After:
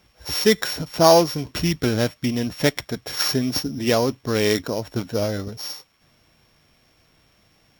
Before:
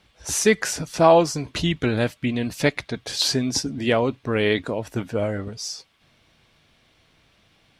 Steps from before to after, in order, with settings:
samples sorted by size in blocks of 8 samples
bad sample-rate conversion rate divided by 2×, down filtered, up hold
level +1 dB

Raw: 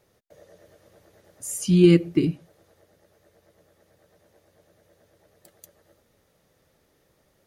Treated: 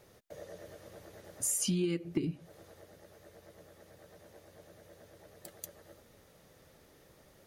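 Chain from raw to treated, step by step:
0:01.47–0:02.05: low-shelf EQ 250 Hz −8.5 dB
downward compressor 20 to 1, threshold −33 dBFS, peak gain reduction 20.5 dB
level +4.5 dB

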